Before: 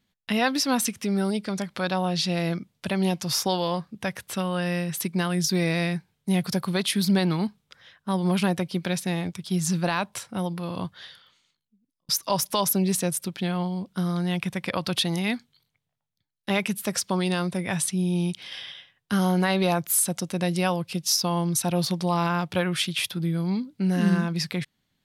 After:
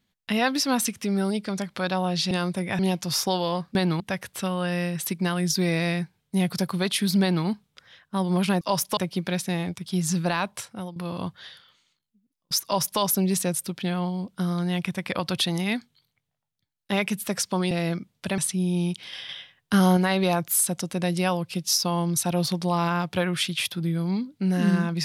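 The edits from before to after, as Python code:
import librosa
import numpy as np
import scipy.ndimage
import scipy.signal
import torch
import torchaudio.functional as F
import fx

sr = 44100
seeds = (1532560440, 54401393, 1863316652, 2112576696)

y = fx.edit(x, sr, fx.swap(start_s=2.31, length_s=0.67, other_s=17.29, other_length_s=0.48),
    fx.duplicate(start_s=7.15, length_s=0.25, to_s=3.94),
    fx.fade_out_to(start_s=10.15, length_s=0.39, floor_db=-12.5),
    fx.duplicate(start_s=12.22, length_s=0.36, to_s=8.55),
    fx.clip_gain(start_s=18.68, length_s=0.68, db=4.0), tone=tone)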